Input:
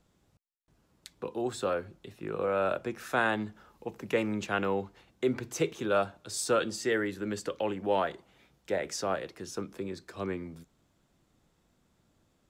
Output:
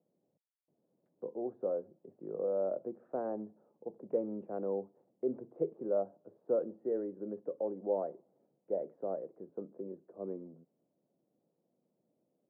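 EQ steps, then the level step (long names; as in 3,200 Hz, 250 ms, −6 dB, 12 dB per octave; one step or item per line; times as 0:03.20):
high-pass filter 160 Hz 24 dB per octave
transistor ladder low-pass 680 Hz, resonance 45%
0.0 dB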